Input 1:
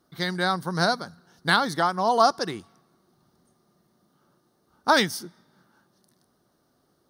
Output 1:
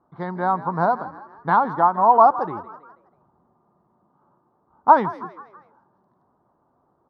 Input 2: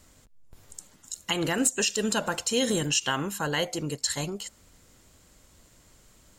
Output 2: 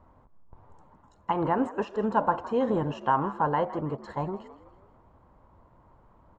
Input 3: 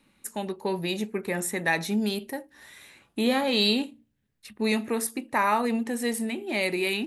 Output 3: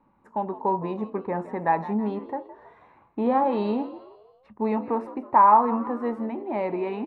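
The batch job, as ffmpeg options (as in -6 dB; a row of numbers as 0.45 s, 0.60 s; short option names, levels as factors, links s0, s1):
-filter_complex "[0:a]lowpass=f=960:t=q:w=4.2,equalizer=f=88:w=1.3:g=3,asplit=2[s0][s1];[s1]asplit=4[s2][s3][s4][s5];[s2]adelay=162,afreqshift=66,volume=0.158[s6];[s3]adelay=324,afreqshift=132,volume=0.0733[s7];[s4]adelay=486,afreqshift=198,volume=0.0335[s8];[s5]adelay=648,afreqshift=264,volume=0.0155[s9];[s6][s7][s8][s9]amix=inputs=4:normalize=0[s10];[s0][s10]amix=inputs=2:normalize=0,volume=0.891"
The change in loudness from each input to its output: +5.0 LU, -1.5 LU, +2.0 LU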